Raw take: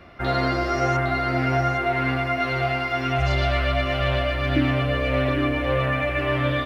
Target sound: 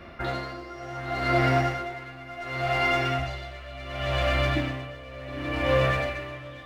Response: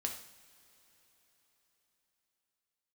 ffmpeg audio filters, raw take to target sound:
-filter_complex "[0:a]asplit=2[a][b];[b]aeval=exprs='0.0708*(abs(mod(val(0)/0.0708+3,4)-2)-1)':c=same,volume=-9dB[c];[a][c]amix=inputs=2:normalize=0[d];[1:a]atrim=start_sample=2205[e];[d][e]afir=irnorm=-1:irlink=0,aeval=exprs='val(0)*pow(10,-19*(0.5-0.5*cos(2*PI*0.69*n/s))/20)':c=same"

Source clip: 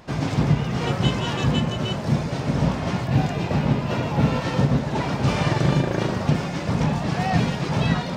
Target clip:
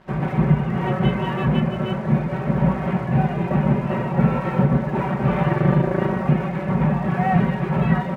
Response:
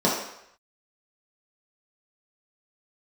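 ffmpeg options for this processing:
-af "lowpass=f=2.2k:w=0.5412,lowpass=f=2.2k:w=1.3066,aecho=1:1:5.3:0.84,aeval=exprs='sgn(val(0))*max(abs(val(0))-0.00376,0)':c=same"

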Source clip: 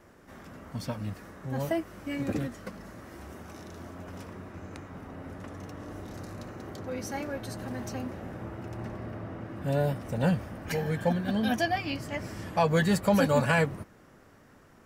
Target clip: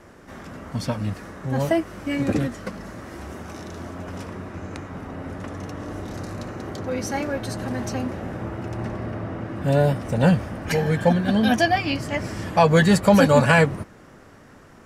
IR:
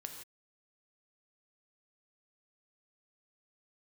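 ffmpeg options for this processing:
-af "lowpass=11k,volume=8.5dB"

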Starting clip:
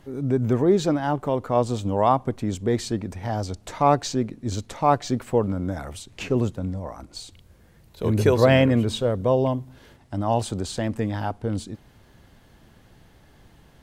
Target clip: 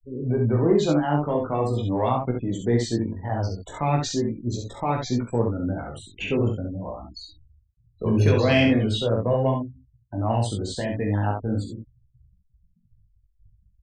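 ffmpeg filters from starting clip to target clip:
-filter_complex "[0:a]afftfilt=real='re*gte(hypot(re,im),0.0224)':imag='im*gte(hypot(re,im),0.0224)':win_size=1024:overlap=0.75,adynamicequalizer=threshold=0.00447:dfrequency=2500:dqfactor=2.2:tfrequency=2500:tqfactor=2.2:attack=5:release=100:ratio=0.375:range=3.5:mode=boostabove:tftype=bell,acrossover=split=300|2400[a][b][c];[b]alimiter=limit=-14.5dB:level=0:latency=1:release=139[d];[a][d][c]amix=inputs=3:normalize=0,asoftclip=type=tanh:threshold=-6.5dB,flanger=delay=16:depth=4:speed=0.41,asplit=2[e][f];[f]aecho=0:1:41|68:0.398|0.562[g];[e][g]amix=inputs=2:normalize=0,volume=2dB"

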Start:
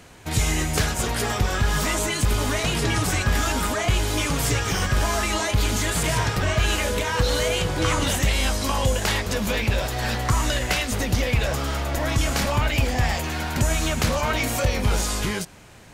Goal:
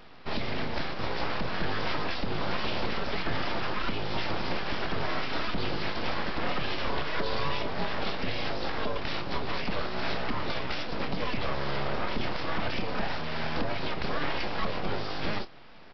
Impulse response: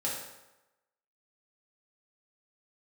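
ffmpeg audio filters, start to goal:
-filter_complex "[0:a]highpass=f=45:w=0.5412,highpass=f=45:w=1.3066,equalizer=f=490:w=0.66:g=6.5,alimiter=limit=-13.5dB:level=0:latency=1:release=416,aresample=11025,aeval=exprs='abs(val(0))':c=same,aresample=44100,asplit=2[a][b];[b]adelay=27,volume=-12.5dB[c];[a][c]amix=inputs=2:normalize=0,volume=-4dB"

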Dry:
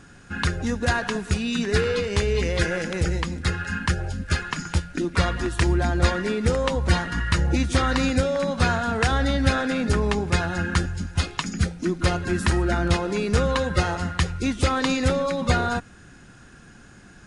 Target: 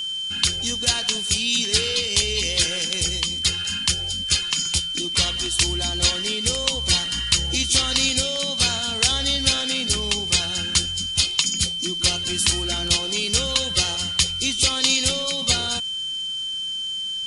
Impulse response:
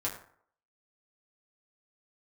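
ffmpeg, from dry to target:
-af "aexciter=amount=10.6:drive=3.6:freq=2.5k,aeval=exprs='val(0)+0.126*sin(2*PI*3100*n/s)':c=same,volume=-7.5dB"

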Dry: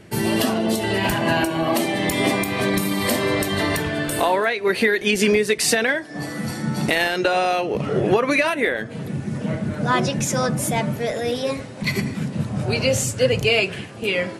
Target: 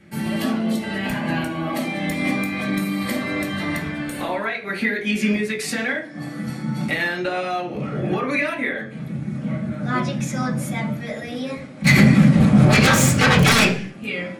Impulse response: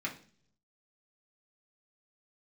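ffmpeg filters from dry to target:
-filter_complex "[0:a]asplit=3[a][b][c];[a]afade=t=out:st=11.84:d=0.02[d];[b]aeval=exprs='0.473*sin(PI/2*4.47*val(0)/0.473)':c=same,afade=t=in:st=11.84:d=0.02,afade=t=out:st=13.69:d=0.02[e];[c]afade=t=in:st=13.69:d=0.02[f];[d][e][f]amix=inputs=3:normalize=0[g];[1:a]atrim=start_sample=2205,afade=t=out:st=0.35:d=0.01,atrim=end_sample=15876,asetrate=42336,aresample=44100[h];[g][h]afir=irnorm=-1:irlink=0,volume=-7dB"

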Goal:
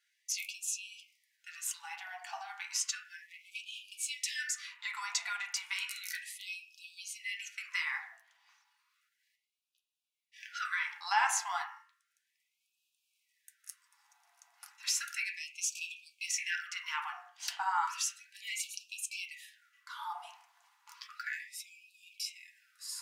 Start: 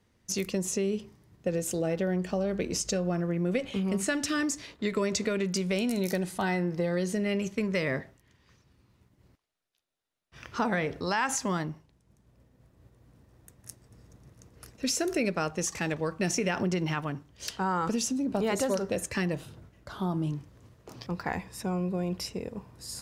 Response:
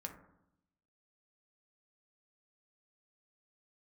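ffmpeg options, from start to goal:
-filter_complex "[0:a]bandreject=f=55.19:t=h:w=4,bandreject=f=110.38:t=h:w=4,bandreject=f=165.57:t=h:w=4,bandreject=f=220.76:t=h:w=4,bandreject=f=275.95:t=h:w=4,bandreject=f=331.14:t=h:w=4,bandreject=f=386.33:t=h:w=4,bandreject=f=441.52:t=h:w=4,bandreject=f=496.71:t=h:w=4,bandreject=f=551.9:t=h:w=4,bandreject=f=607.09:t=h:w=4,bandreject=f=662.28:t=h:w=4,bandreject=f=717.47:t=h:w=4,bandreject=f=772.66:t=h:w=4,bandreject=f=827.85:t=h:w=4,bandreject=f=883.04:t=h:w=4,bandreject=f=938.23:t=h:w=4,bandreject=f=993.42:t=h:w=4,bandreject=f=1.04861k:t=h:w=4,bandreject=f=1.1038k:t=h:w=4,bandreject=f=1.15899k:t=h:w=4,bandreject=f=1.21418k:t=h:w=4,bandreject=f=1.26937k:t=h:w=4,bandreject=f=1.32456k:t=h:w=4,bandreject=f=1.37975k:t=h:w=4,bandreject=f=1.43494k:t=h:w=4,bandreject=f=1.49013k:t=h:w=4,bandreject=f=1.54532k:t=h:w=4,bandreject=f=1.60051k:t=h:w=4,bandreject=f=1.6557k:t=h:w=4,bandreject=f=1.71089k:t=h:w=4,bandreject=f=1.76608k:t=h:w=4,bandreject=f=1.82127k:t=h:w=4,bandreject=f=1.87646k:t=h:w=4,asettb=1/sr,asplit=3[a][b][c];[a]atrim=end=3.284[d];[b]atrim=start=3.28:end=4.09,asetpts=PTS-STARTPTS,afade=t=in:d=0.004:c=qsin,afade=t=out:st=0.806:d=0.004:c=qsin,aeval=exprs='clip(val(0),-1,0.0562)':c=same[e];[c]atrim=start=4.086[f];[d][e]acrossfade=d=0.004:c1=hsin:c2=qsin[g];[g][f]acrossfade=d=0.004:c1=qsin:c2=hsin[h];[1:a]atrim=start_sample=2205,afade=t=out:st=0.38:d=0.01,atrim=end_sample=17199,asetrate=70560,aresample=44100[i];[h][i]afir=irnorm=-1:irlink=0,afftfilt=real='re*gte(b*sr/1024,650*pow(2400/650,0.5+0.5*sin(2*PI*0.33*pts/sr)))':imag='im*gte(b*sr/1024,650*pow(2400/650,0.5+0.5*sin(2*PI*0.33*pts/sr)))':win_size=1024:overlap=0.75,volume=7dB"

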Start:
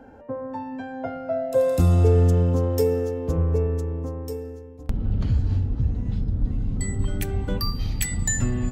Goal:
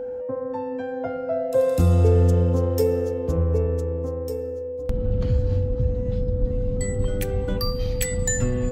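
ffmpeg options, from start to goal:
-af "aeval=exprs='val(0)+0.0398*sin(2*PI*500*n/s)':c=same"

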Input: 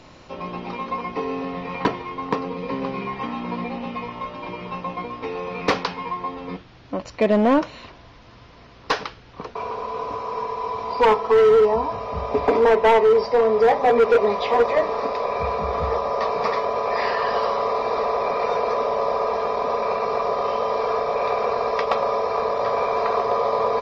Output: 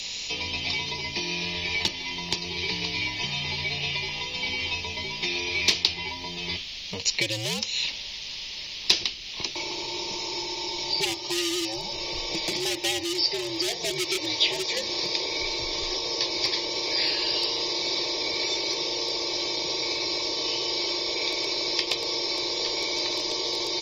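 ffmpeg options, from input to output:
-filter_complex "[0:a]afreqshift=-94,acrossover=split=490|4600[a][b][c];[a]acompressor=threshold=-31dB:ratio=4[d];[b]acompressor=threshold=-37dB:ratio=4[e];[c]acompressor=threshold=-52dB:ratio=4[f];[d][e][f]amix=inputs=3:normalize=0,aexciter=amount=15.9:drive=7.2:freq=2.3k,volume=-4.5dB"

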